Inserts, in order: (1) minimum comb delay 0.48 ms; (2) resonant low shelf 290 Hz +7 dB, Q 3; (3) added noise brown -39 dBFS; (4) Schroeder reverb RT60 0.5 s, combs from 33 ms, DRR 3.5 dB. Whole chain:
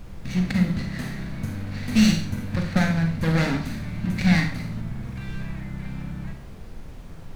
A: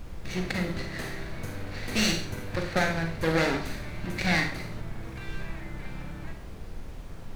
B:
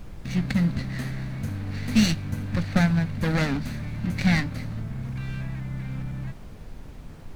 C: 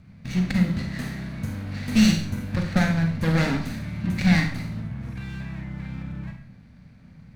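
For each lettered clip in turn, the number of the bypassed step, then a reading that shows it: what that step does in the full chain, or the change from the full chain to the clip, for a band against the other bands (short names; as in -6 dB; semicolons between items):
2, 250 Hz band -10.0 dB; 4, momentary loudness spread change -2 LU; 3, momentary loudness spread change -4 LU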